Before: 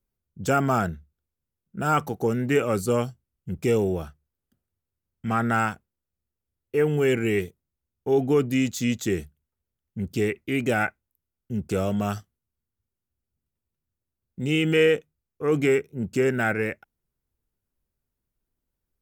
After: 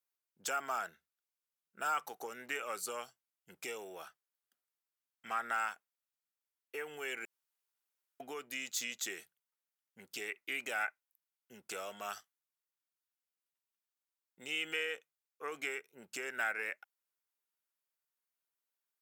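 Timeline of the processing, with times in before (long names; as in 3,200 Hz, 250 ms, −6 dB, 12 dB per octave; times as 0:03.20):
0:07.25–0:08.20: fill with room tone
whole clip: downward compressor, threshold −25 dBFS; high-pass filter 980 Hz 12 dB per octave; level −2 dB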